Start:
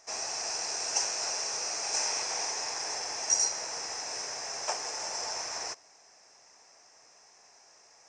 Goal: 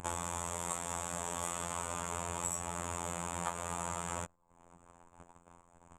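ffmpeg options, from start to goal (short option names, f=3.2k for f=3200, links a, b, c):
-filter_complex "[0:a]asetrate=59535,aresample=44100,asplit=2[a][b];[b]acompressor=mode=upward:threshold=-35dB:ratio=2.5,volume=0.5dB[c];[a][c]amix=inputs=2:normalize=0,tiltshelf=f=1.1k:g=9,asplit=2[d][e];[e]aecho=0:1:107|214|321:0.112|0.0415|0.0154[f];[d][f]amix=inputs=2:normalize=0,afftfilt=real='hypot(re,im)*cos(PI*b)':imag='0':win_size=2048:overlap=0.75,bass=f=250:g=14,treble=f=4k:g=1,bandreject=f=50:t=h:w=6,bandreject=f=100:t=h:w=6,bandreject=f=150:t=h:w=6,bandreject=f=200:t=h:w=6,anlmdn=0.0631,acompressor=threshold=-35dB:ratio=6,volume=3dB"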